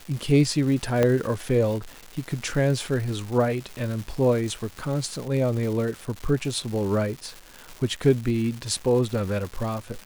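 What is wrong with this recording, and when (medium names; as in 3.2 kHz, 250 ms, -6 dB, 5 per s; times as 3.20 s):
crackle 460 per s -32 dBFS
1.03 s: pop -9 dBFS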